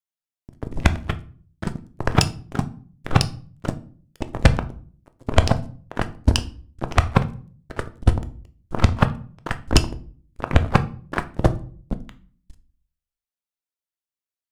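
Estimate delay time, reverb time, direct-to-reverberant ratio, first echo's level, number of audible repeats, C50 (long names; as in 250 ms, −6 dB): no echo audible, 0.45 s, 9.5 dB, no echo audible, no echo audible, 17.5 dB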